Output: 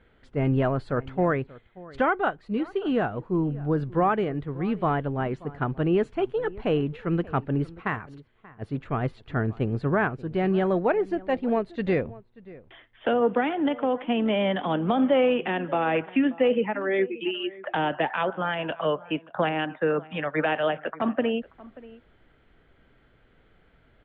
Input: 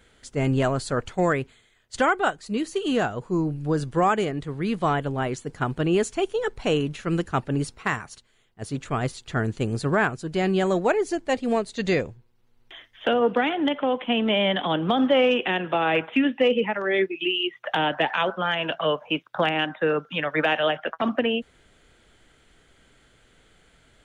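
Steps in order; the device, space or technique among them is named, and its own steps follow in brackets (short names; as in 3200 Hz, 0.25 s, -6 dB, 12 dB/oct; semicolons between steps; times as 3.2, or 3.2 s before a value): shout across a valley (air absorption 480 m; outdoor echo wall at 100 m, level -20 dB)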